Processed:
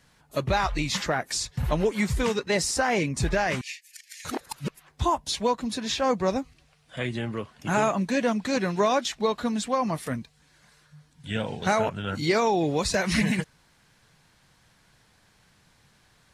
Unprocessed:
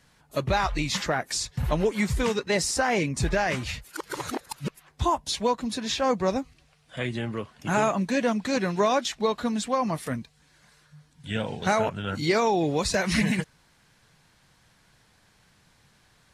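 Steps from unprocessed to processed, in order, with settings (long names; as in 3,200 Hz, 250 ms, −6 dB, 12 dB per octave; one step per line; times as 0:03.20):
0:03.61–0:04.25: Chebyshev high-pass with heavy ripple 1,700 Hz, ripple 6 dB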